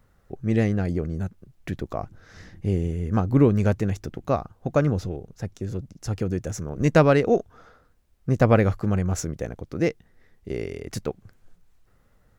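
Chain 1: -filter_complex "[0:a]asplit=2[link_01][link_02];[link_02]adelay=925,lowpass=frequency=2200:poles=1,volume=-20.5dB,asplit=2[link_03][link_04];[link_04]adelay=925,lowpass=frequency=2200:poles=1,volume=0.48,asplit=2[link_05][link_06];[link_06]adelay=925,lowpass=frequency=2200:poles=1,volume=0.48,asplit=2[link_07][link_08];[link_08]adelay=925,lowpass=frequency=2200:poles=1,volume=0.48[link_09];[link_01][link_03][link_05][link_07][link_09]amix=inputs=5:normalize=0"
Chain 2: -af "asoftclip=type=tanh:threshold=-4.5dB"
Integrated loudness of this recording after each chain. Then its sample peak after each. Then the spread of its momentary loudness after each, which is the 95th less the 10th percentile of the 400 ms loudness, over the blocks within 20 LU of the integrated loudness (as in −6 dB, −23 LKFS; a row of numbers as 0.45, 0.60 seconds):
−25.0, −25.0 LKFS; −2.5, −6.0 dBFS; 18, 15 LU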